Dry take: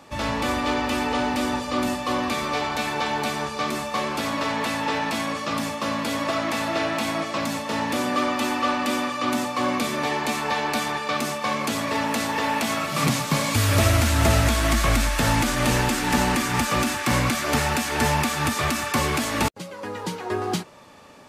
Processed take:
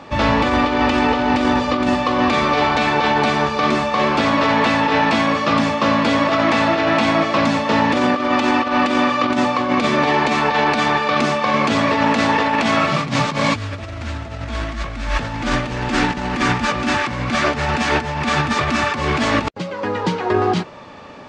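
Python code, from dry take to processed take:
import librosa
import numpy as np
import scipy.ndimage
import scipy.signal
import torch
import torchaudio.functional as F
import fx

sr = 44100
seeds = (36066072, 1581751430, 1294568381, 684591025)

y = fx.over_compress(x, sr, threshold_db=-25.0, ratio=-0.5)
y = scipy.ndimage.gaussian_filter1d(y, 1.7, mode='constant')
y = y * 10.0 ** (8.5 / 20.0)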